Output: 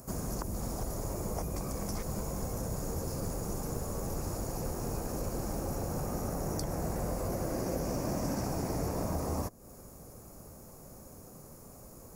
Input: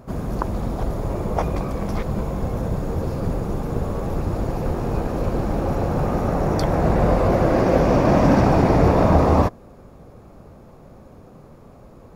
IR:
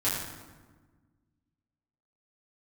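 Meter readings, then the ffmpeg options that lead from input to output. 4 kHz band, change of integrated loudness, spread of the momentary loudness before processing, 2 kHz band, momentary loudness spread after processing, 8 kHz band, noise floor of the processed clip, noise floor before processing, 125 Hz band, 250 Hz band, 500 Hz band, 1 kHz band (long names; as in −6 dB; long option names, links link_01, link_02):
−7.5 dB, −15.0 dB, 10 LU, −17.0 dB, 16 LU, +3.5 dB, −51 dBFS, −46 dBFS, −15.0 dB, −15.5 dB, −16.5 dB, −17.0 dB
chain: -filter_complex "[0:a]aexciter=amount=5.4:drive=9.5:freq=5300,acrossover=split=440|7800[link_01][link_02][link_03];[link_01]acompressor=threshold=-27dB:ratio=4[link_04];[link_02]acompressor=threshold=-34dB:ratio=4[link_05];[link_03]acompressor=threshold=-43dB:ratio=4[link_06];[link_04][link_05][link_06]amix=inputs=3:normalize=0,volume=-7dB"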